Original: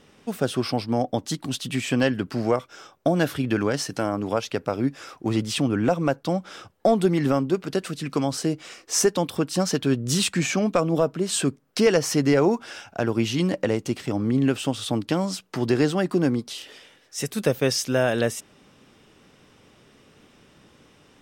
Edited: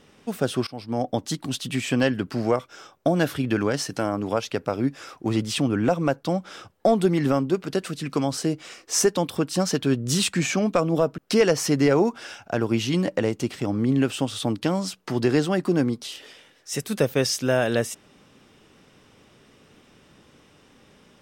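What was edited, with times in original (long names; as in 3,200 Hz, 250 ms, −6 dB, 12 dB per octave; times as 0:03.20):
0:00.67–0:01.09: fade in, from −21.5 dB
0:11.18–0:11.64: remove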